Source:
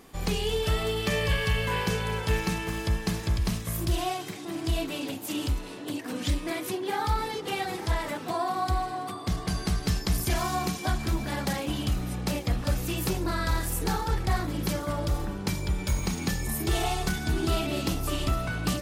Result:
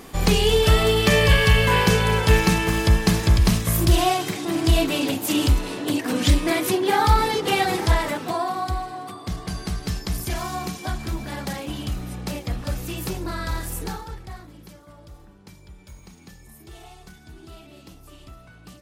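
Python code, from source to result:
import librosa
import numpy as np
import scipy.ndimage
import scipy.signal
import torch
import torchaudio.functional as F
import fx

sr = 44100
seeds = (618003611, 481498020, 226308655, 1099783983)

y = fx.gain(x, sr, db=fx.line((7.77, 10.0), (8.85, -0.5), (13.8, -0.5), (14.18, -10.0), (14.76, -17.0)))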